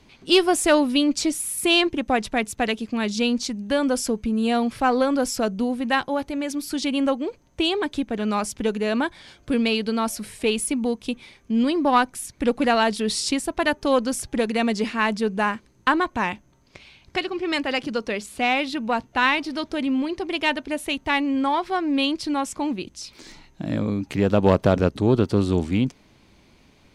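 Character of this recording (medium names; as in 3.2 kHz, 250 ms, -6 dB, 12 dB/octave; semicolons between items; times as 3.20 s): noise floor -57 dBFS; spectral tilt -4.5 dB/octave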